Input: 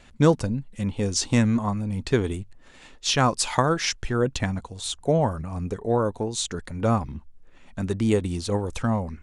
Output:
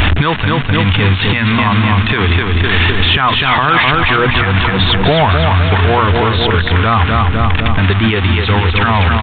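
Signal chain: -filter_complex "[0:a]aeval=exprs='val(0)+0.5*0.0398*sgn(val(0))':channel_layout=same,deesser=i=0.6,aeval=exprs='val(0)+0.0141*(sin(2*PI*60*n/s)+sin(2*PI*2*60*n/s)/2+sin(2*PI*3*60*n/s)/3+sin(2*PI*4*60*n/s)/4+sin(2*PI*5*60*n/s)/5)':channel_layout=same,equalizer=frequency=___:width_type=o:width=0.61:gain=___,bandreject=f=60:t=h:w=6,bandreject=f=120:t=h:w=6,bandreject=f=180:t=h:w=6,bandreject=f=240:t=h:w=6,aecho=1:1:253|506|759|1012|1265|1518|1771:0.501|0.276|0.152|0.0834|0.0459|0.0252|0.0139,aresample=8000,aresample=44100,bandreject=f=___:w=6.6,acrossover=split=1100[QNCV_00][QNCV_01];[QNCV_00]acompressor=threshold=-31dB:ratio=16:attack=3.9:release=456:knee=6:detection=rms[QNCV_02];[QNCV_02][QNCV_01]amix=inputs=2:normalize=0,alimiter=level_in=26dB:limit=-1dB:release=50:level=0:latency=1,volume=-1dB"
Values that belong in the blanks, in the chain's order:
84, 12.5, 540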